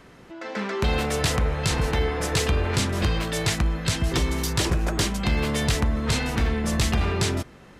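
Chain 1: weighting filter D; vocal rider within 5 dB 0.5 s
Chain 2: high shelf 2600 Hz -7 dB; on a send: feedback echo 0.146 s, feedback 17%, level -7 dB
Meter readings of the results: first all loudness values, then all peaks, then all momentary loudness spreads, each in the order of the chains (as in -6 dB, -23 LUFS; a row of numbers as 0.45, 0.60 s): -20.0, -24.5 LUFS; -3.5, -12.0 dBFS; 3, 2 LU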